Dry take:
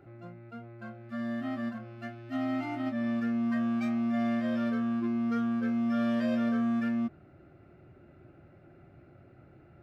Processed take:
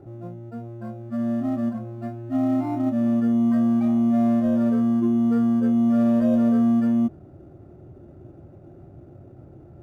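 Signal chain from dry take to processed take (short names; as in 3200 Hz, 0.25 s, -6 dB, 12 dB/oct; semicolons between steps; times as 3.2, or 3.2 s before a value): in parallel at -5 dB: sample-and-hold 14×; on the sum: EQ curve 110 Hz 0 dB, 170 Hz -3 dB, 340 Hz -1 dB, 960 Hz -5 dB, 1400 Hz -13 dB, 3100 Hz -19 dB; gain +8 dB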